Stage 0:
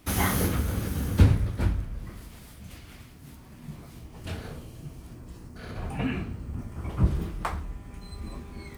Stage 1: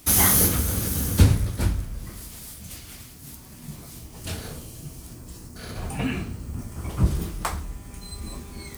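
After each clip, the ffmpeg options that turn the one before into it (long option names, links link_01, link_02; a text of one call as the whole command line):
ffmpeg -i in.wav -af "bass=frequency=250:gain=0,treble=frequency=4000:gain=13,volume=2dB" out.wav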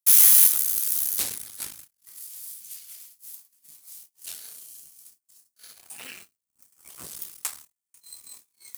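ffmpeg -i in.wav -af "aeval=exprs='0.708*(cos(1*acos(clip(val(0)/0.708,-1,1)))-cos(1*PI/2))+0.178*(cos(8*acos(clip(val(0)/0.708,-1,1)))-cos(8*PI/2))':channel_layout=same,aderivative,agate=range=-37dB:threshold=-44dB:ratio=16:detection=peak,volume=-1dB" out.wav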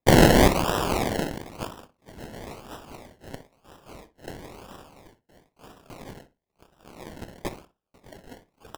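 ffmpeg -i in.wav -filter_complex "[0:a]acrusher=samples=29:mix=1:aa=0.000001:lfo=1:lforange=17.4:lforate=1,asplit=2[link_01][link_02];[link_02]adelay=61,lowpass=frequency=2000:poles=1,volume=-13dB,asplit=2[link_03][link_04];[link_04]adelay=61,lowpass=frequency=2000:poles=1,volume=0.17[link_05];[link_01][link_03][link_05]amix=inputs=3:normalize=0" out.wav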